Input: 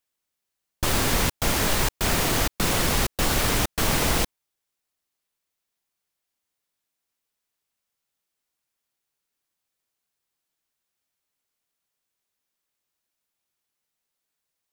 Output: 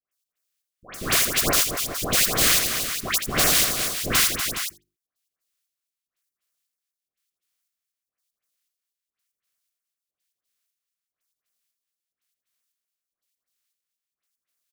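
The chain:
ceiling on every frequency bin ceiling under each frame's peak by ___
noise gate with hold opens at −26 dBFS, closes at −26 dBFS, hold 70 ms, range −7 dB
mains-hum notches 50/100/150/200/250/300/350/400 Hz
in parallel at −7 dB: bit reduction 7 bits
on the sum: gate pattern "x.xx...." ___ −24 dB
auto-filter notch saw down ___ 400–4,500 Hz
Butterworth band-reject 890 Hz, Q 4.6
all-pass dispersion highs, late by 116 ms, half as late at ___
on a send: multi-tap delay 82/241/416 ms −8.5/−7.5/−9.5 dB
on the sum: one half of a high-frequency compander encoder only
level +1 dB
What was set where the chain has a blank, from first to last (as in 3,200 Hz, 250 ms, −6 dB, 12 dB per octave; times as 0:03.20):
20 dB, 119 BPM, 3.6 Hz, 1,400 Hz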